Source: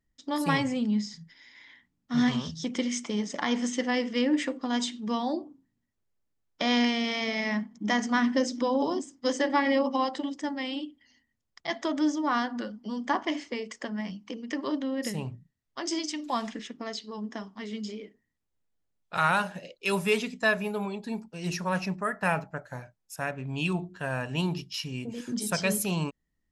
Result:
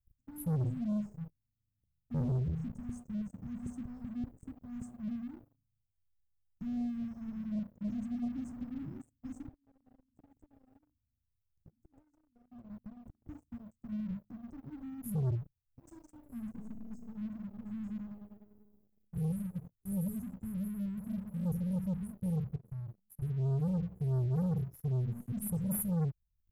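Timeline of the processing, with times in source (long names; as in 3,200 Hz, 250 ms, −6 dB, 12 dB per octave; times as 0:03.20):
0:02.12–0:04.94: auto-filter notch square 2.6 Hz 300–2,100 Hz
0:09.48–0:13.29: downward compressor 16 to 1, threshold −38 dBFS
0:16.43–0:18.02: thrown reverb, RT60 2.2 s, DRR 4.5 dB
0:20.67–0:21.21: delay throw 300 ms, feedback 60%, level −6 dB
0:22.55–0:23.22: downward compressor 8 to 1, threshold −46 dBFS
whole clip: inverse Chebyshev band-stop filter 610–4,400 Hz, stop band 80 dB; leveller curve on the samples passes 3; level +7 dB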